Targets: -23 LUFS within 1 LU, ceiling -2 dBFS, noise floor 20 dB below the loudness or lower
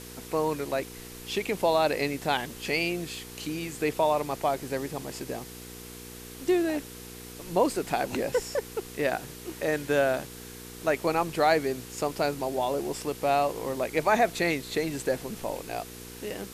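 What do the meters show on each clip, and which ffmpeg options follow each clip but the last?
hum 60 Hz; harmonics up to 480 Hz; hum level -44 dBFS; noise floor -44 dBFS; noise floor target -49 dBFS; loudness -28.5 LUFS; peak -11.0 dBFS; loudness target -23.0 LUFS
-> -af "bandreject=f=60:t=h:w=4,bandreject=f=120:t=h:w=4,bandreject=f=180:t=h:w=4,bandreject=f=240:t=h:w=4,bandreject=f=300:t=h:w=4,bandreject=f=360:t=h:w=4,bandreject=f=420:t=h:w=4,bandreject=f=480:t=h:w=4"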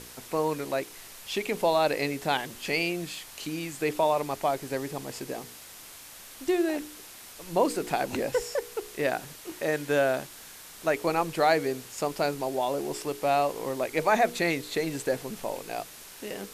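hum none; noise floor -47 dBFS; noise floor target -49 dBFS
-> -af "afftdn=nr=6:nf=-47"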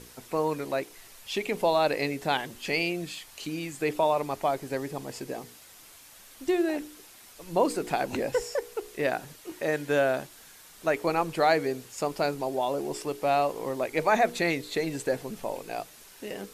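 noise floor -52 dBFS; loudness -29.0 LUFS; peak -11.5 dBFS; loudness target -23.0 LUFS
-> -af "volume=6dB"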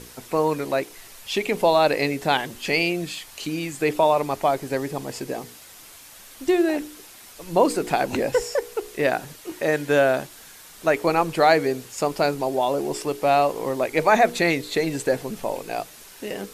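loudness -23.0 LUFS; peak -5.5 dBFS; noise floor -46 dBFS

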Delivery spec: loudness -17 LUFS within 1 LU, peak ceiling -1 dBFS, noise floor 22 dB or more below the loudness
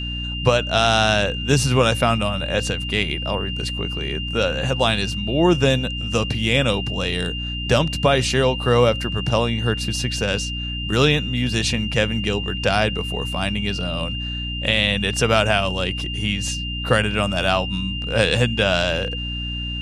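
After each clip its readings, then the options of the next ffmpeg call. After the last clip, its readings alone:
hum 60 Hz; harmonics up to 300 Hz; hum level -26 dBFS; steady tone 2800 Hz; tone level -28 dBFS; loudness -20.5 LUFS; peak -2.5 dBFS; loudness target -17.0 LUFS
-> -af "bandreject=f=60:t=h:w=4,bandreject=f=120:t=h:w=4,bandreject=f=180:t=h:w=4,bandreject=f=240:t=h:w=4,bandreject=f=300:t=h:w=4"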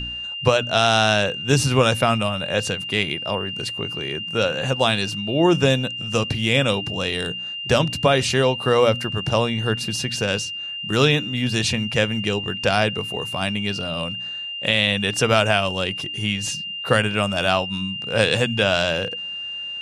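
hum none; steady tone 2800 Hz; tone level -28 dBFS
-> -af "bandreject=f=2.8k:w=30"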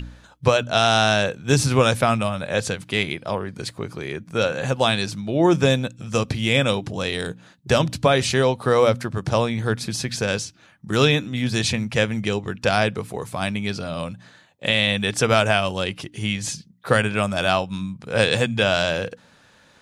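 steady tone none; loudness -21.5 LUFS; peak -3.5 dBFS; loudness target -17.0 LUFS
-> -af "volume=4.5dB,alimiter=limit=-1dB:level=0:latency=1"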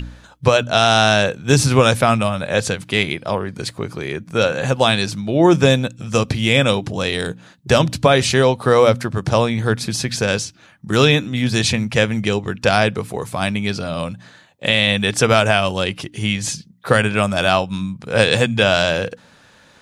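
loudness -17.5 LUFS; peak -1.0 dBFS; noise floor -50 dBFS

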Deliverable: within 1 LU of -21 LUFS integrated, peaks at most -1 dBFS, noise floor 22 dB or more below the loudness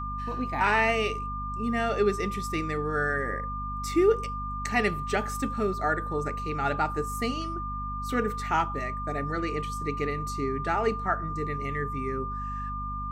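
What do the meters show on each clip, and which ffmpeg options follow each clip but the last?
hum 50 Hz; harmonics up to 250 Hz; hum level -34 dBFS; steady tone 1200 Hz; tone level -33 dBFS; loudness -29.0 LUFS; peak -11.0 dBFS; loudness target -21.0 LUFS
-> -af "bandreject=f=50:t=h:w=6,bandreject=f=100:t=h:w=6,bandreject=f=150:t=h:w=6,bandreject=f=200:t=h:w=6,bandreject=f=250:t=h:w=6"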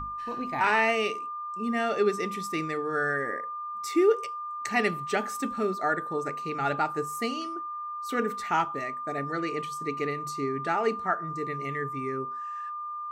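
hum none; steady tone 1200 Hz; tone level -33 dBFS
-> -af "bandreject=f=1.2k:w=30"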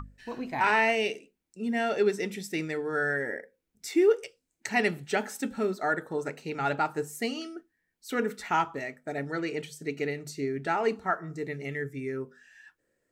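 steady tone none; loudness -30.0 LUFS; peak -11.5 dBFS; loudness target -21.0 LUFS
-> -af "volume=9dB"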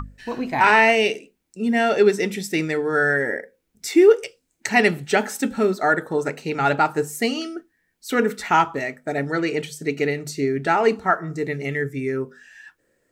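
loudness -21.0 LUFS; peak -2.5 dBFS; noise floor -71 dBFS

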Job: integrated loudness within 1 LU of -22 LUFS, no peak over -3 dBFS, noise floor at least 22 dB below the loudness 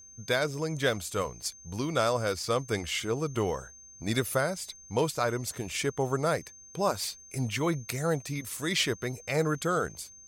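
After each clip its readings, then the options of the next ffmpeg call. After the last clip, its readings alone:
steady tone 6300 Hz; tone level -49 dBFS; loudness -30.5 LUFS; peak -13.5 dBFS; loudness target -22.0 LUFS
-> -af "bandreject=f=6.3k:w=30"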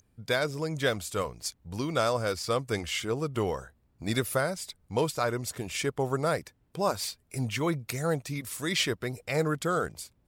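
steady tone none; loudness -30.5 LUFS; peak -13.0 dBFS; loudness target -22.0 LUFS
-> -af "volume=8.5dB"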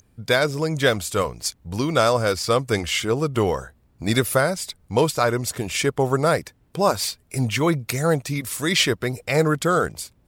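loudness -22.0 LUFS; peak -4.5 dBFS; noise floor -60 dBFS

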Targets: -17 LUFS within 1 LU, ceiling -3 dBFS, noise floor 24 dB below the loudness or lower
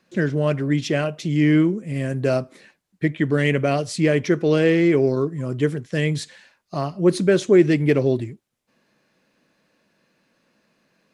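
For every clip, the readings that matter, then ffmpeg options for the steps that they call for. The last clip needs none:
loudness -20.5 LUFS; peak -4.0 dBFS; loudness target -17.0 LUFS
-> -af "volume=3.5dB,alimiter=limit=-3dB:level=0:latency=1"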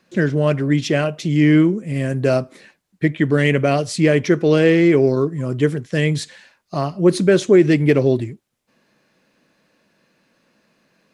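loudness -17.0 LUFS; peak -3.0 dBFS; noise floor -67 dBFS

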